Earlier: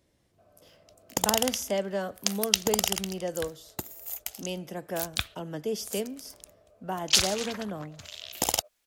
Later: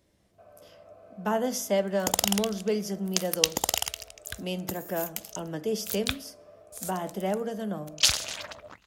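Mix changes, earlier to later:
first sound +8.0 dB
second sound: entry +0.90 s
reverb: on, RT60 0.50 s

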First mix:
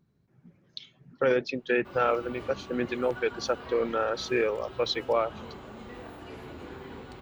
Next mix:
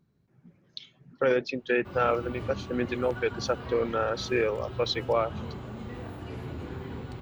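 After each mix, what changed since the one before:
background: add parametric band 110 Hz +12.5 dB 1.8 octaves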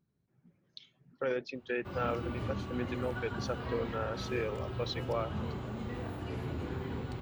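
speech −9.0 dB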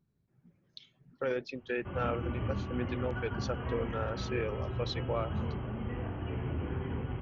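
background: add linear-phase brick-wall low-pass 3,300 Hz
master: add low-shelf EQ 84 Hz +8.5 dB

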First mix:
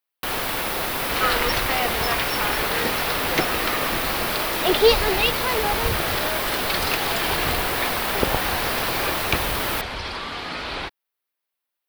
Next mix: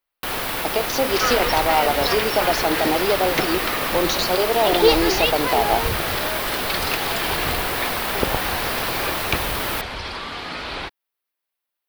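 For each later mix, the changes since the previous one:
speech: unmuted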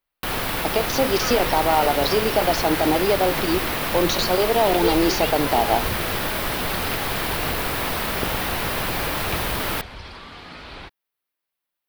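second sound −9.5 dB
master: add bass and treble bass +6 dB, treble −1 dB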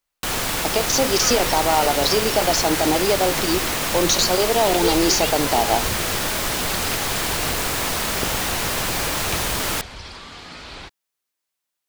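master: add parametric band 7,000 Hz +13.5 dB 0.95 octaves

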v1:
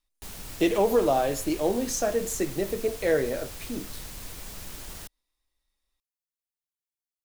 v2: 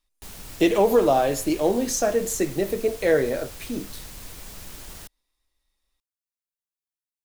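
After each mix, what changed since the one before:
speech +4.0 dB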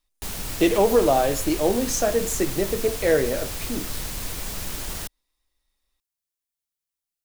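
background +9.0 dB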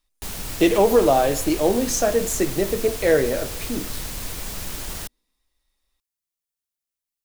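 reverb: on, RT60 2.4 s

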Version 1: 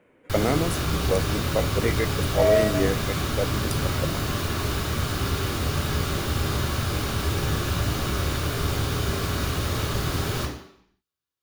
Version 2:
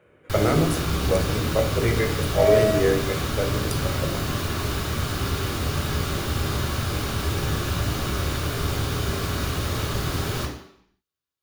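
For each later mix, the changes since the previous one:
speech: send on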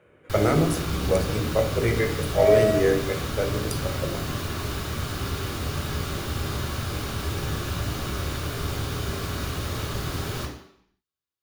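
background −3.5 dB

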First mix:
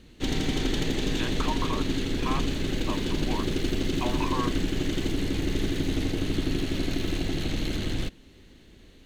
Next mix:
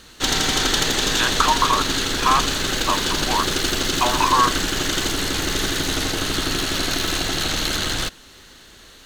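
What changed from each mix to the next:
master: remove drawn EQ curve 290 Hz 0 dB, 1,400 Hz −19 dB, 2,200 Hz −9 dB, 5,400 Hz −18 dB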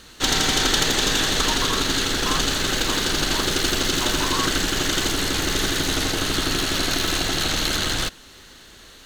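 speech −12.0 dB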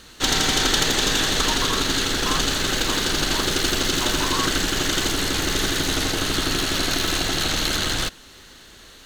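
nothing changed

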